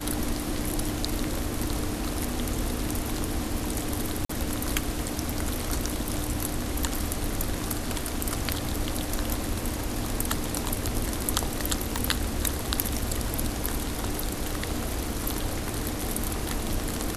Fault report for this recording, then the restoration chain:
0:04.25–0:04.29: drop-out 44 ms
0:11.96: click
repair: click removal
repair the gap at 0:04.25, 44 ms

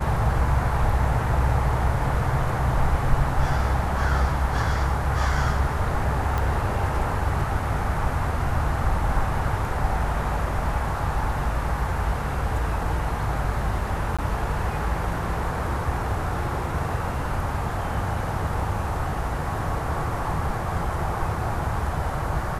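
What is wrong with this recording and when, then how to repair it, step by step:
0:06.38: click
0:14.17–0:14.19: drop-out 16 ms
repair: click removal
repair the gap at 0:14.17, 16 ms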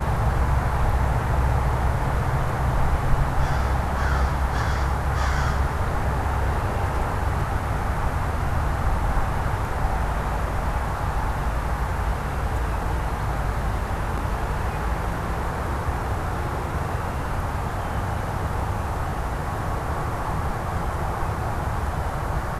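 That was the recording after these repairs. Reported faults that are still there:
none of them is left

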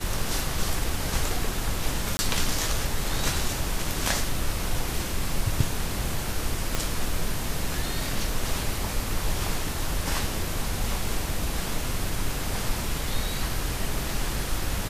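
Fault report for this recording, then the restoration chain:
0:02.17–0:02.19: drop-out 20 ms
0:06.75: click −9 dBFS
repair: click removal
repair the gap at 0:02.17, 20 ms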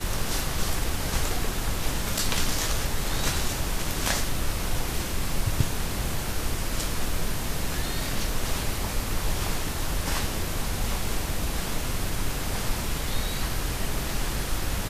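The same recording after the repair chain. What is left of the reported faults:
0:06.75: click

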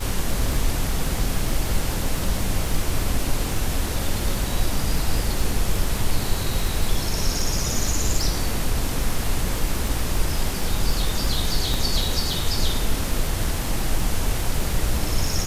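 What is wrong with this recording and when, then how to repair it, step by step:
surface crackle 44 per second −26 dBFS
0:11.74: click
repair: click removal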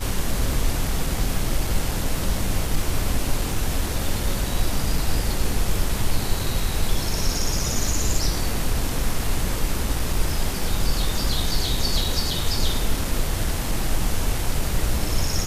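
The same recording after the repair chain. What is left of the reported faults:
0:11.74: click

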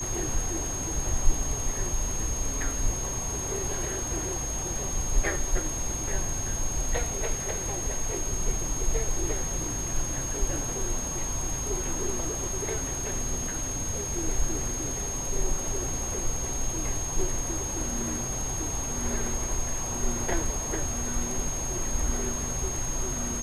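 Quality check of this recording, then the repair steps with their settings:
whistle 6,500 Hz −32 dBFS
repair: notch filter 6,500 Hz, Q 30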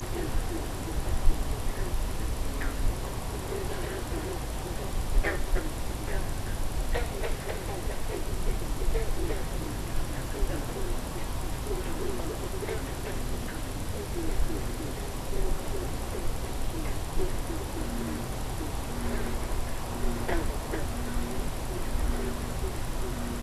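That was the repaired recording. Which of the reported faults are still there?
none of them is left

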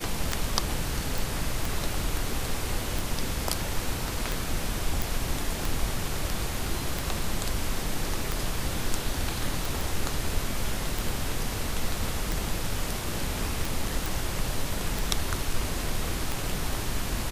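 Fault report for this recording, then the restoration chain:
scratch tick 45 rpm
0:01.18: click
0:05.02: click
0:09.81: click
0:14.06: click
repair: click removal

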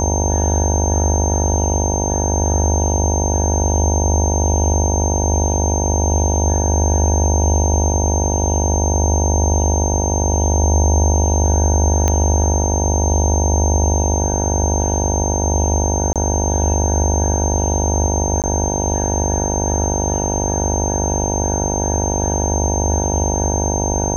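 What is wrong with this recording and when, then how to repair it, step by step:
mains buzz 50 Hz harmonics 19 −21 dBFS
whistle 6,300 Hz −22 dBFS
0:12.08: click −4 dBFS
0:16.13–0:16.16: drop-out 27 ms
0:18.42–0:18.44: drop-out 18 ms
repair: click removal
notch filter 6,300 Hz, Q 30
hum removal 50 Hz, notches 19
repair the gap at 0:16.13, 27 ms
repair the gap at 0:18.42, 18 ms

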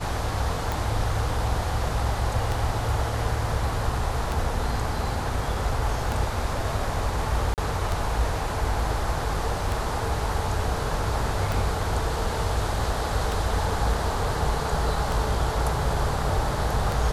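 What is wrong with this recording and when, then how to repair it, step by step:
scratch tick 33 1/3 rpm
0:07.54–0:07.58: drop-out 38 ms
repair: click removal
repair the gap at 0:07.54, 38 ms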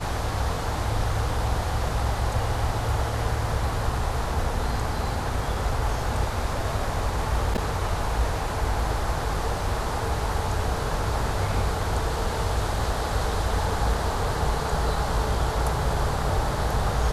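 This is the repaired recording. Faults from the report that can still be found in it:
none of them is left

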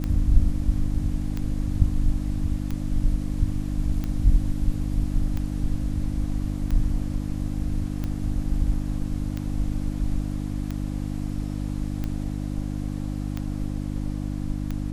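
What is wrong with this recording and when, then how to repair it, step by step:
mains hum 50 Hz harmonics 6 −29 dBFS
scratch tick 45 rpm −17 dBFS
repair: click removal
hum removal 50 Hz, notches 6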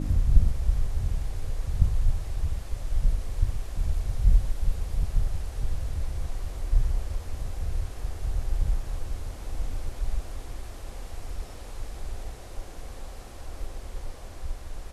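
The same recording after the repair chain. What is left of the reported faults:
none of them is left

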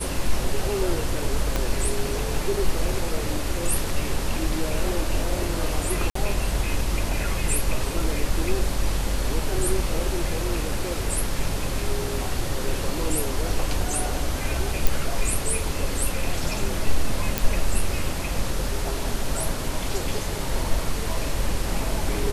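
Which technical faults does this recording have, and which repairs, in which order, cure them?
0:01.56: click
0:06.10–0:06.15: drop-out 54 ms
0:14.87: click
0:17.38: click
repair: click removal
repair the gap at 0:06.10, 54 ms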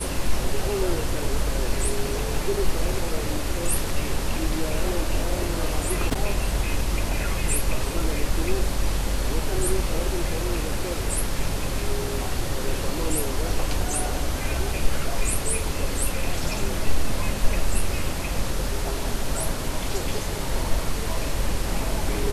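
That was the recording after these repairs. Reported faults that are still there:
0:01.56: click

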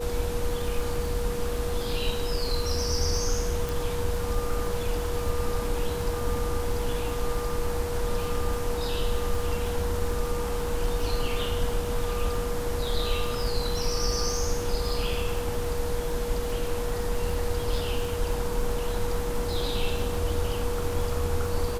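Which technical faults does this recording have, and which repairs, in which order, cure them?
surface crackle 49 per second −33 dBFS
whistle 480 Hz −31 dBFS
0:03.69: click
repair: click removal
notch filter 480 Hz, Q 30

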